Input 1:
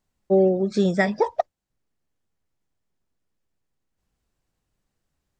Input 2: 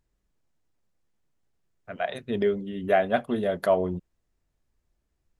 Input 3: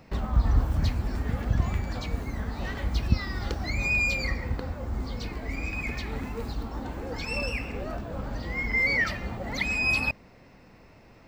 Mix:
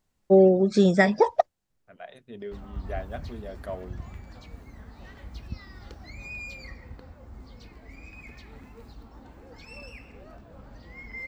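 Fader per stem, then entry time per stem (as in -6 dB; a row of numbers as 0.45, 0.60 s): +1.5, -14.0, -13.5 dB; 0.00, 0.00, 2.40 s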